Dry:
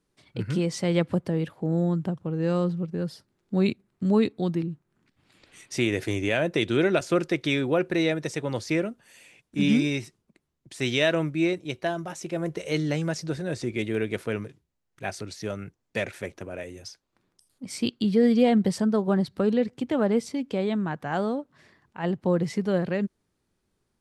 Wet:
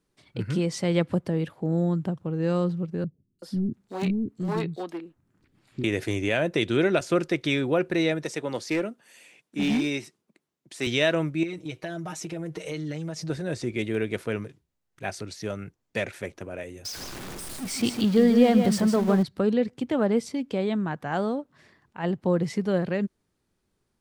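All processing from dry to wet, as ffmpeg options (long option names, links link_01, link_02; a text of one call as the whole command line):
ffmpeg -i in.wav -filter_complex "[0:a]asettb=1/sr,asplit=3[link_01][link_02][link_03];[link_01]atrim=end=3.044[link_04];[link_02]atrim=start=3.04:end=5.84,asetpts=PTS-STARTPTS,afade=type=in:duration=0.004:curve=qsin,afade=type=out:start_time=2.796:duration=0.004:curve=qsin,volume=20dB,asoftclip=hard,volume=-20dB,acrossover=split=320|3900[link_05][link_06][link_07];[link_07]adelay=350[link_08];[link_06]adelay=380[link_09];[link_05][link_09][link_08]amix=inputs=3:normalize=0,atrim=end_sample=123480[link_10];[link_03]atrim=start=5.836[link_11];[link_04][link_10]acrossfade=duration=0.004:curve1=hsin:curve2=qsin[link_12];[link_12][link_11]acrossfade=duration=0.004:curve1=qsin:curve2=hsin,asettb=1/sr,asplit=3[link_13][link_14][link_15];[link_13]atrim=end=8.234[link_16];[link_14]atrim=start=8.23:end=10.87,asetpts=PTS-STARTPTS,afade=type=in:duration=0.004:curve=qsin,afade=type=out:start_time=2.636:duration=0.004:curve=qsin,highpass=200,asoftclip=type=hard:threshold=-20dB[link_17];[link_15]atrim=start=10.866[link_18];[link_16][link_17]acrossfade=duration=0.004:curve1=hsin:curve2=qsin[link_19];[link_19][link_18]acrossfade=duration=0.004:curve1=qsin:curve2=hsin,asettb=1/sr,asplit=3[link_20][link_21][link_22];[link_20]atrim=end=11.434[link_23];[link_21]atrim=start=11.43:end=13.3,asetpts=PTS-STARTPTS,afade=type=in:duration=0.004:curve=qsin,afade=type=out:start_time=1.866:duration=0.004:curve=qsin,aecho=1:1:6.4:0.94,atrim=end_sample=82467,acompressor=threshold=-30dB:ratio=5:attack=3.2:release=140:knee=1:detection=peak[link_24];[link_22]atrim=start=13.296[link_25];[link_23][link_24]acrossfade=duration=0.004:curve1=hsin:curve2=qsin[link_26];[link_26][link_25]acrossfade=duration=0.004:curve1=qsin:curve2=hsin,asettb=1/sr,asplit=3[link_27][link_28][link_29];[link_27]atrim=end=16.854[link_30];[link_28]atrim=start=16.85:end=19.23,asetpts=PTS-STARTPTS,afade=type=in:duration=0.004:curve=qsin,afade=type=out:start_time=2.376:duration=0.004:curve=qsin,aeval=exprs='val(0)+0.5*0.0237*sgn(val(0))':channel_layout=same,aecho=1:1:156:0.447,atrim=end_sample=104958[link_31];[link_29]atrim=start=19.226[link_32];[link_30][link_31]acrossfade=duration=0.004:curve1=hsin:curve2=qsin[link_33];[link_33][link_32]acrossfade=duration=0.004:curve1=qsin:curve2=hsin" out.wav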